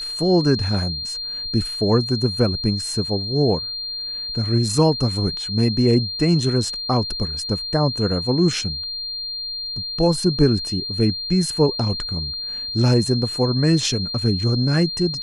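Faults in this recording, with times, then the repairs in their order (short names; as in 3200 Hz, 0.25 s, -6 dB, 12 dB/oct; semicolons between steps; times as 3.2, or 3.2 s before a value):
tone 4200 Hz -26 dBFS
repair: notch 4200 Hz, Q 30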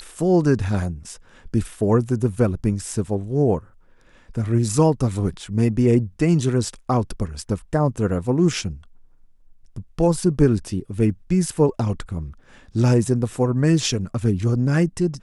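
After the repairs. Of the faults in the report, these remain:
none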